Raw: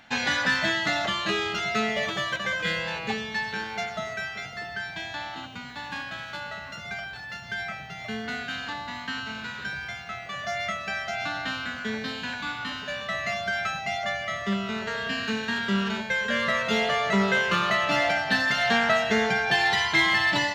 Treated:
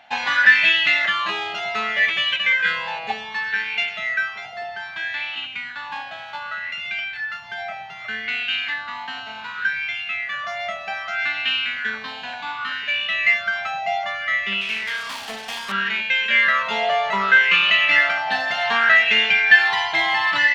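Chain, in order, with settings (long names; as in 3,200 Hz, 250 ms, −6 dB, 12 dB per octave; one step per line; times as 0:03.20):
0:14.61–0:15.72: phase distortion by the signal itself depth 0.5 ms
drawn EQ curve 190 Hz 0 dB, 1,400 Hz +7 dB, 2,700 Hz +14 dB, 7,100 Hz +4 dB
auto-filter bell 0.65 Hz 730–2,700 Hz +17 dB
level −11 dB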